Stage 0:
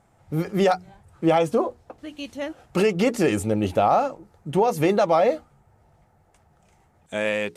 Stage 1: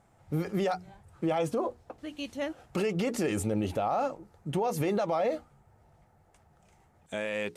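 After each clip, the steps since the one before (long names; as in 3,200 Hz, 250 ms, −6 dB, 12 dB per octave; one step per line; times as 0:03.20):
brickwall limiter −18 dBFS, peak gain reduction 8 dB
level −3 dB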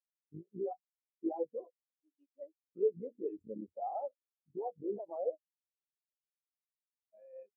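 sub-harmonics by changed cycles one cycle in 3, muted
low-shelf EQ 170 Hz −9.5 dB
every bin expanded away from the loudest bin 4 to 1
level −1 dB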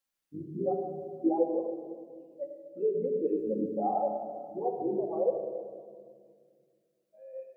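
speech leveller 0.5 s
rectangular room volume 2,900 cubic metres, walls mixed, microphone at 2.2 metres
level +6 dB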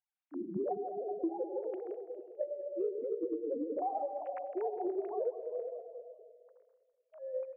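three sine waves on the formant tracks
downward compressor 12 to 1, threshold −37 dBFS, peak gain reduction 19 dB
repeating echo 204 ms, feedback 48%, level −14 dB
level +5 dB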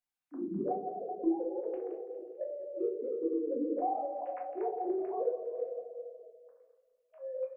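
rectangular room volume 250 cubic metres, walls furnished, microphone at 1.9 metres
level −2.5 dB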